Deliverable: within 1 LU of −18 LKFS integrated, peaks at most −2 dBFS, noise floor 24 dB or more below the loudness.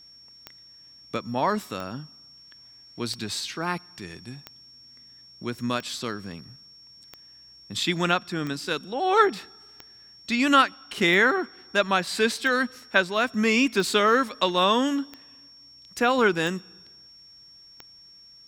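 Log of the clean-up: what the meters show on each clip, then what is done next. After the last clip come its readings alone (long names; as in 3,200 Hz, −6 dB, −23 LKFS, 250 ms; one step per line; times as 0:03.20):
number of clicks 14; interfering tone 5,500 Hz; level of the tone −48 dBFS; integrated loudness −24.0 LKFS; sample peak −3.5 dBFS; target loudness −18.0 LKFS
→ click removal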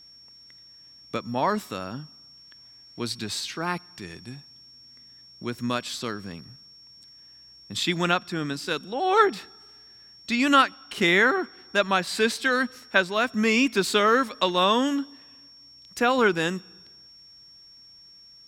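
number of clicks 0; interfering tone 5,500 Hz; level of the tone −48 dBFS
→ notch filter 5,500 Hz, Q 30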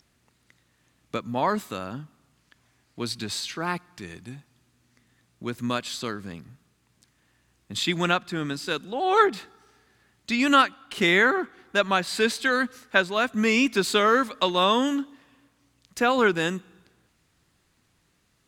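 interfering tone none found; integrated loudness −24.0 LKFS; sample peak −3.5 dBFS; target loudness −18.0 LKFS
→ level +6 dB
brickwall limiter −2 dBFS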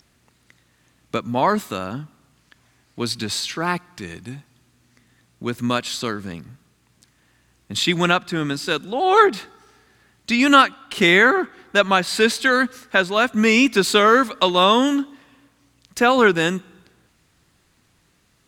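integrated loudness −18.5 LKFS; sample peak −2.0 dBFS; background noise floor −62 dBFS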